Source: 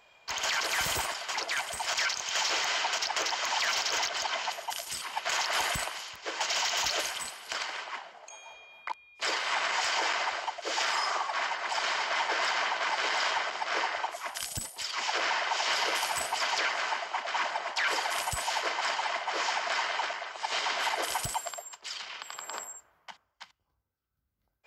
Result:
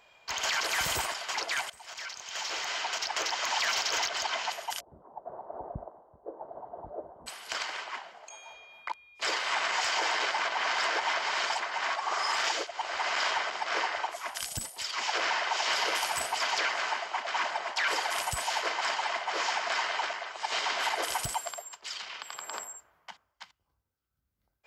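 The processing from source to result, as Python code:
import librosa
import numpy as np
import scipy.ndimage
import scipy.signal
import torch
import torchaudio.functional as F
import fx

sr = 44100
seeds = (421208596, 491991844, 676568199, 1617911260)

y = fx.cheby2_lowpass(x, sr, hz=2300.0, order=4, stop_db=60, at=(4.79, 7.26), fade=0.02)
y = fx.edit(y, sr, fx.fade_in_from(start_s=1.7, length_s=1.76, floor_db=-19.0),
    fx.reverse_span(start_s=10.11, length_s=3.07), tone=tone)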